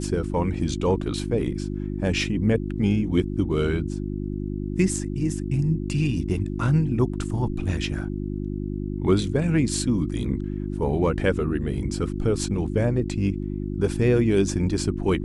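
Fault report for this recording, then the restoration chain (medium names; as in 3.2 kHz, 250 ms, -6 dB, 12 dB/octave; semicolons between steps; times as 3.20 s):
hum 50 Hz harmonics 7 -29 dBFS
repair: de-hum 50 Hz, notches 7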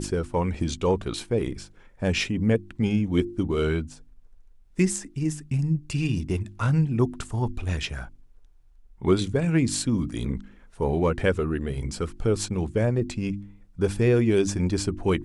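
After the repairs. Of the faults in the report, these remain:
nothing left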